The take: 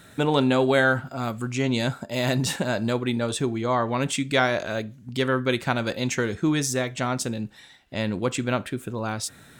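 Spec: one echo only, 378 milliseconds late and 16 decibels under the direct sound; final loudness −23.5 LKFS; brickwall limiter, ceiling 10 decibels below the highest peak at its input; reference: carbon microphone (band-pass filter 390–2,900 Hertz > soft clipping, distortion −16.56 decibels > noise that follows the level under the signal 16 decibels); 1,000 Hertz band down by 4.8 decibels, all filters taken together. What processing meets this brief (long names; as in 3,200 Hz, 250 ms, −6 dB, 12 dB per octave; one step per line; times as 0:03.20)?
parametric band 1,000 Hz −6.5 dB
brickwall limiter −18.5 dBFS
band-pass filter 390–2,900 Hz
single-tap delay 378 ms −16 dB
soft clipping −23 dBFS
noise that follows the level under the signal 16 dB
level +11 dB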